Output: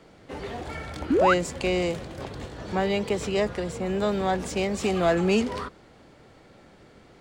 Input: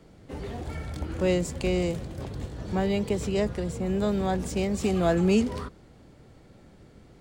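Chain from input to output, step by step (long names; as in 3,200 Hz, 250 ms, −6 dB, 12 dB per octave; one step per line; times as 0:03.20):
mid-hump overdrive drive 12 dB, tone 3,900 Hz, clips at −11.5 dBFS
sound drawn into the spectrogram rise, 0:01.10–0:01.34, 230–1,700 Hz −20 dBFS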